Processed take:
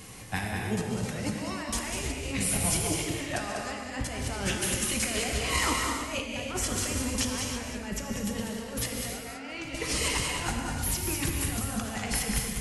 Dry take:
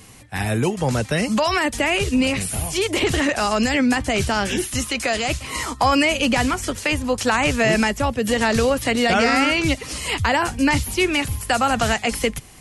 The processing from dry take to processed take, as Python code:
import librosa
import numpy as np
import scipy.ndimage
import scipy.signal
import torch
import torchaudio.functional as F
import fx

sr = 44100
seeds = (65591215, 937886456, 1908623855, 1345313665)

p1 = fx.over_compress(x, sr, threshold_db=-26.0, ratio=-0.5)
p2 = p1 + fx.echo_single(p1, sr, ms=197, db=-6.5, dry=0)
p3 = fx.rev_gated(p2, sr, seeds[0], gate_ms=350, shape='flat', drr_db=1.0)
y = p3 * 10.0 ** (-7.5 / 20.0)